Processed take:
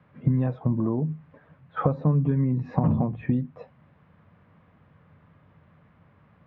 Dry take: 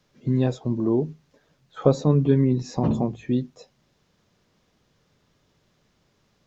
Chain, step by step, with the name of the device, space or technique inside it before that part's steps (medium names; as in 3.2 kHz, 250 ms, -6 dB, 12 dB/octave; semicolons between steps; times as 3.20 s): bass amplifier (compression 5:1, threshold -29 dBFS, peak gain reduction 15.5 dB; cabinet simulation 60–2200 Hz, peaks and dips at 91 Hz +10 dB, 160 Hz +6 dB, 380 Hz -9 dB, 1.1 kHz +4 dB); trim +7.5 dB